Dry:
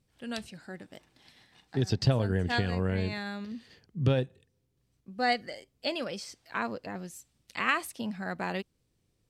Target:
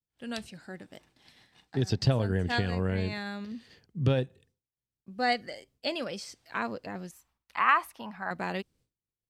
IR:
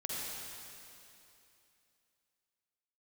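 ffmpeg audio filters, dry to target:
-filter_complex "[0:a]agate=range=-33dB:threshold=-59dB:ratio=3:detection=peak,asettb=1/sr,asplit=3[link_01][link_02][link_03];[link_01]atrim=end=7.114[link_04];[link_02]atrim=start=7.11:end=8.31,asetpts=PTS-STARTPTS,afade=type=in:duration=0.004:curve=qsin,afade=type=out:start_time=1.196:duration=0.004:curve=qsin,equalizer=frequency=125:width_type=o:width=1:gain=-10,equalizer=frequency=250:width_type=o:width=1:gain=-6,equalizer=frequency=500:width_type=o:width=1:gain=-6,equalizer=frequency=1000:width_type=o:width=1:gain=12,equalizer=frequency=4000:width_type=o:width=1:gain=-5,equalizer=frequency=8000:width_type=o:width=1:gain=-12[link_05];[link_03]atrim=start=8.306[link_06];[link_04][link_05]acrossfade=duration=0.004:curve1=hsin:curve2=qsin[link_07];[link_07][link_06]acrossfade=duration=0.004:curve1=qsin:curve2=hsin"

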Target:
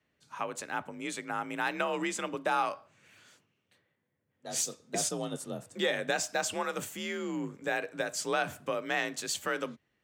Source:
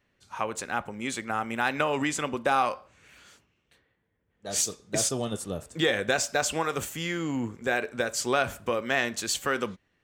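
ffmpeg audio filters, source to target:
ffmpeg -i in.wav -af "afreqshift=43,volume=-5dB" out.wav

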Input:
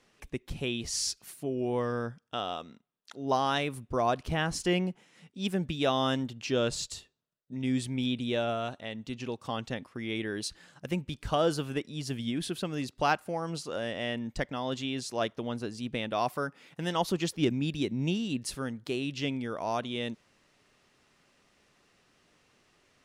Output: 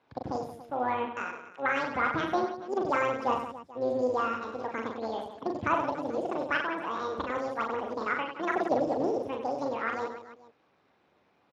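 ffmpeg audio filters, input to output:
ffmpeg -i in.wav -af "lowpass=1000,tremolo=f=70:d=0.571,aecho=1:1:80|192|348.8|568.3|875.6:0.631|0.398|0.251|0.158|0.1,asetrate=88200,aresample=44100,volume=2.5dB" -ar 32000 -c:a libspeex -b:a 36k out.spx

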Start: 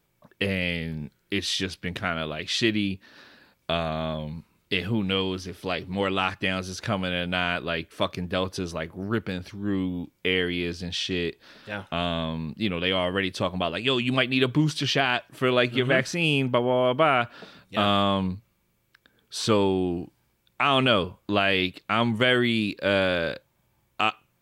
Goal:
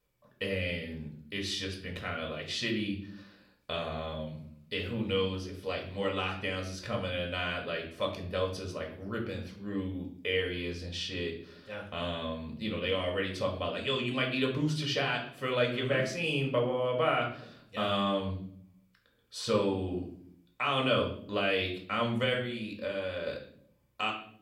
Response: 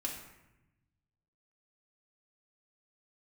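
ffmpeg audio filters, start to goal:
-filter_complex "[0:a]asettb=1/sr,asplit=3[link_01][link_02][link_03];[link_01]atrim=end=22.334[link_04];[link_02]atrim=start=22.33:end=23.27,asetpts=PTS-STARTPTS,afade=type=in:duration=0.004:curve=qsin,afade=type=out:start_time=0.936:duration=0.004:curve=qsin,acompressor=threshold=-26dB:ratio=10[link_05];[link_03]atrim=start=23.266[link_06];[link_04][link_05]acrossfade=duration=0.004:curve1=hsin:curve2=qsin[link_07];[link_07][link_06]acrossfade=duration=0.004:curve1=qsin:curve2=hsin[link_08];[1:a]atrim=start_sample=2205,asetrate=83790,aresample=44100[link_09];[link_08][link_09]afir=irnorm=-1:irlink=0,volume=-3dB"

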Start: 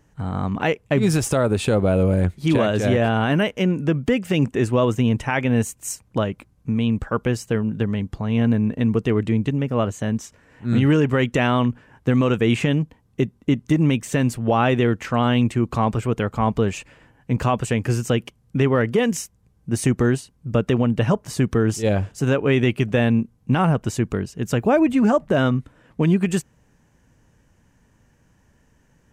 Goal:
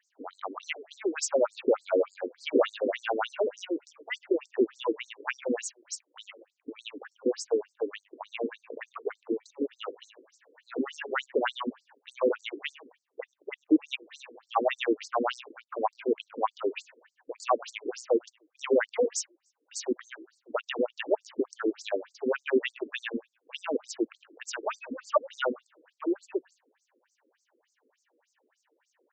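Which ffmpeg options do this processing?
ffmpeg -i in.wav -filter_complex "[0:a]asplit=4[link_01][link_02][link_03][link_04];[link_02]adelay=99,afreqshift=-47,volume=-23dB[link_05];[link_03]adelay=198,afreqshift=-94,volume=-31.2dB[link_06];[link_04]adelay=297,afreqshift=-141,volume=-39.4dB[link_07];[link_01][link_05][link_06][link_07]amix=inputs=4:normalize=0,asplit=3[link_08][link_09][link_10];[link_08]afade=type=out:start_time=15.07:duration=0.02[link_11];[link_09]adynamicsmooth=sensitivity=1.5:basefreq=2100,afade=type=in:start_time=15.07:duration=0.02,afade=type=out:start_time=15.97:duration=0.02[link_12];[link_10]afade=type=in:start_time=15.97:duration=0.02[link_13];[link_11][link_12][link_13]amix=inputs=3:normalize=0,afftfilt=real='re*between(b*sr/1024,360*pow(6100/360,0.5+0.5*sin(2*PI*3.4*pts/sr))/1.41,360*pow(6100/360,0.5+0.5*sin(2*PI*3.4*pts/sr))*1.41)':imag='im*between(b*sr/1024,360*pow(6100/360,0.5+0.5*sin(2*PI*3.4*pts/sr))/1.41,360*pow(6100/360,0.5+0.5*sin(2*PI*3.4*pts/sr))*1.41)':win_size=1024:overlap=0.75" out.wav

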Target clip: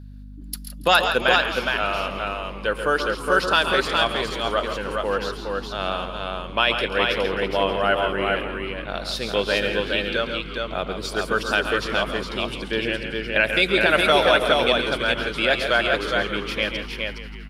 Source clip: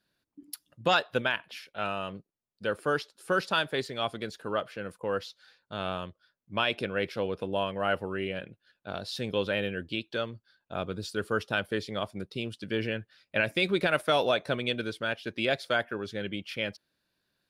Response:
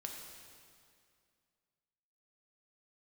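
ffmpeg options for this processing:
-filter_complex "[0:a]highpass=frequency=470:poles=1,asplit=2[link_01][link_02];[link_02]asplit=8[link_03][link_04][link_05][link_06][link_07][link_08][link_09][link_10];[link_03]adelay=166,afreqshift=-85,volume=-12.5dB[link_11];[link_04]adelay=332,afreqshift=-170,volume=-16.4dB[link_12];[link_05]adelay=498,afreqshift=-255,volume=-20.3dB[link_13];[link_06]adelay=664,afreqshift=-340,volume=-24.1dB[link_14];[link_07]adelay=830,afreqshift=-425,volume=-28dB[link_15];[link_08]adelay=996,afreqshift=-510,volume=-31.9dB[link_16];[link_09]adelay=1162,afreqshift=-595,volume=-35.8dB[link_17];[link_10]adelay=1328,afreqshift=-680,volume=-39.6dB[link_18];[link_11][link_12][link_13][link_14][link_15][link_16][link_17][link_18]amix=inputs=8:normalize=0[link_19];[link_01][link_19]amix=inputs=2:normalize=0,aeval=exprs='val(0)+0.00447*(sin(2*PI*50*n/s)+sin(2*PI*2*50*n/s)/2+sin(2*PI*3*50*n/s)/3+sin(2*PI*4*50*n/s)/4+sin(2*PI*5*50*n/s)/5)':channel_layout=same,asplit=2[link_20][link_21];[link_21]aecho=0:1:112|136|415:0.15|0.376|0.668[link_22];[link_20][link_22]amix=inputs=2:normalize=0,volume=8.5dB"

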